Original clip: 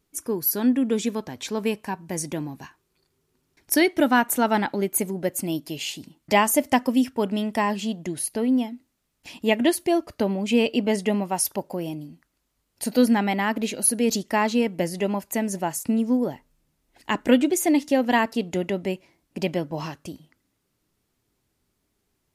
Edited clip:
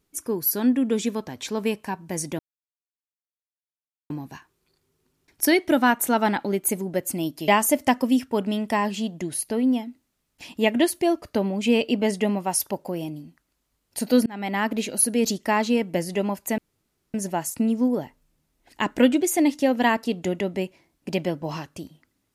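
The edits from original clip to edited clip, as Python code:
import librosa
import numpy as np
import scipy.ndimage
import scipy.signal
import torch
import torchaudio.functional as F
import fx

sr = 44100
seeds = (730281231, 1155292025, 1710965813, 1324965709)

y = fx.edit(x, sr, fx.insert_silence(at_s=2.39, length_s=1.71),
    fx.cut(start_s=5.77, length_s=0.56),
    fx.fade_in_span(start_s=13.11, length_s=0.34),
    fx.insert_room_tone(at_s=15.43, length_s=0.56), tone=tone)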